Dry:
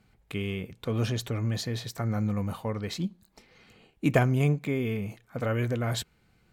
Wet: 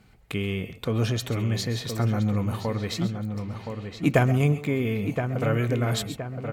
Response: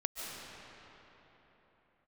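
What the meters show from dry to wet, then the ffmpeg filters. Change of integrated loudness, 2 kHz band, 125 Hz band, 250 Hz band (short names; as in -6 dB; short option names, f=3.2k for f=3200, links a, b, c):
+3.0 dB, +3.5 dB, +4.0 dB, +4.0 dB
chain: -filter_complex "[0:a]asplit=2[a][b];[b]adelay=1020,lowpass=f=2.5k:p=1,volume=-8dB,asplit=2[c][d];[d]adelay=1020,lowpass=f=2.5k:p=1,volume=0.39,asplit=2[e][f];[f]adelay=1020,lowpass=f=2.5k:p=1,volume=0.39,asplit=2[g][h];[h]adelay=1020,lowpass=f=2.5k:p=1,volume=0.39[i];[a][c][e][g][i]amix=inputs=5:normalize=0[j];[1:a]atrim=start_sample=2205,atrim=end_sample=6174[k];[j][k]afir=irnorm=-1:irlink=0,asplit=2[l][m];[m]acompressor=threshold=-41dB:ratio=6,volume=-1dB[n];[l][n]amix=inputs=2:normalize=0,volume=3dB"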